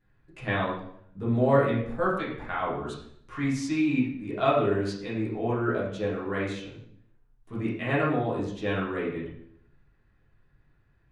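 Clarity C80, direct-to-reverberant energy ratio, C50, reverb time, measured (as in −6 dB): 6.5 dB, −7.0 dB, 3.0 dB, 0.65 s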